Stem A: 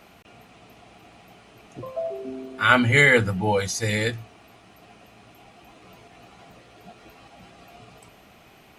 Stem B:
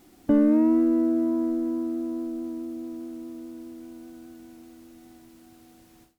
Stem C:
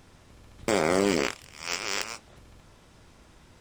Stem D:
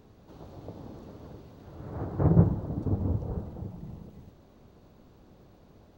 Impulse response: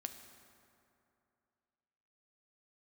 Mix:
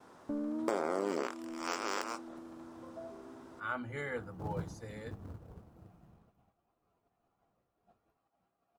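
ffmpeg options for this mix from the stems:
-filter_complex "[0:a]lowshelf=f=180:g=-6.5,adelay=1000,volume=0.112[s0];[1:a]volume=0.133[s1];[2:a]highpass=280,volume=1.26[s2];[3:a]acrusher=bits=3:mode=log:mix=0:aa=0.000001,adelay=2200,volume=0.112[s3];[s0][s1][s2][s3]amix=inputs=4:normalize=0,agate=range=0.0224:threshold=0.00112:ratio=3:detection=peak,highshelf=f=1700:t=q:w=1.5:g=-9,acompressor=threshold=0.0282:ratio=4"

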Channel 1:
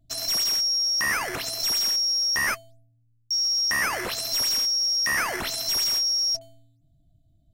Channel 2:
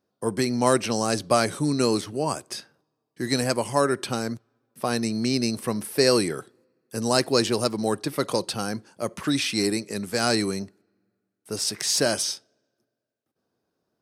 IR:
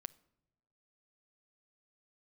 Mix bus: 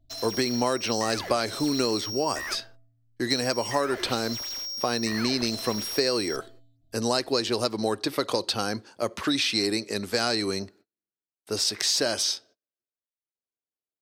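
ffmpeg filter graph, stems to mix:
-filter_complex "[0:a]tiltshelf=f=970:g=3.5,asoftclip=type=hard:threshold=0.0299,volume=0.631,asplit=2[s0][s1];[s1]volume=0.251[s2];[1:a]agate=range=0.0316:threshold=0.00224:ratio=16:detection=peak,volume=1.41[s3];[2:a]atrim=start_sample=2205[s4];[s2][s4]afir=irnorm=-1:irlink=0[s5];[s0][s3][s5]amix=inputs=3:normalize=0,equalizer=f=160:t=o:w=0.67:g=-12,equalizer=f=4000:t=o:w=0.67:g=5,equalizer=f=10000:t=o:w=0.67:g=-8,acompressor=threshold=0.0891:ratio=6"

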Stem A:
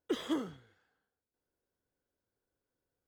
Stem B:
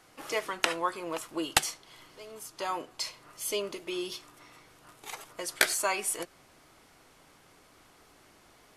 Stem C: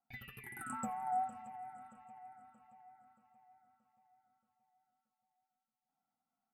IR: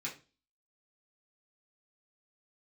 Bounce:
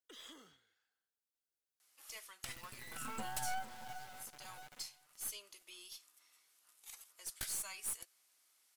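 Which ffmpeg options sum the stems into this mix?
-filter_complex "[0:a]equalizer=f=120:w=1.2:g=-7.5,alimiter=level_in=2.82:limit=0.0631:level=0:latency=1:release=182,volume=0.355,tiltshelf=f=1500:g=-9.5,volume=0.237[s0];[1:a]aderivative,adelay=1800,volume=0.335[s1];[2:a]acrusher=bits=6:dc=4:mix=0:aa=0.000001,adelay=2350,volume=0.841,asplit=2[s2][s3];[s3]volume=0.112,aecho=0:1:387:1[s4];[s0][s1][s2][s4]amix=inputs=4:normalize=0,aeval=exprs='0.158*(cos(1*acos(clip(val(0)/0.158,-1,1)))-cos(1*PI/2))+0.00891*(cos(5*acos(clip(val(0)/0.158,-1,1)))-cos(5*PI/2))+0.0501*(cos(6*acos(clip(val(0)/0.158,-1,1)))-cos(6*PI/2))':c=same,asoftclip=type=tanh:threshold=0.0266"

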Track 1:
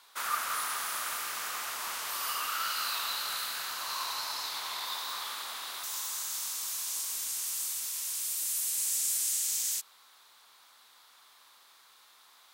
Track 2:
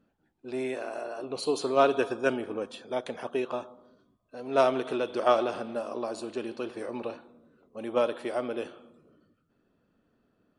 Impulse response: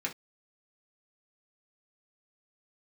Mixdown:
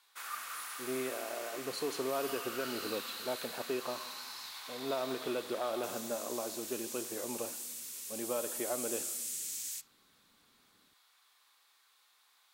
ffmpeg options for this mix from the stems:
-filter_complex "[0:a]highpass=f=360:p=1,volume=0.251,asplit=2[s0][s1];[s1]volume=0.473[s2];[1:a]alimiter=limit=0.0841:level=0:latency=1:release=144,adelay=350,volume=0.562[s3];[2:a]atrim=start_sample=2205[s4];[s2][s4]afir=irnorm=-1:irlink=0[s5];[s0][s3][s5]amix=inputs=3:normalize=0"

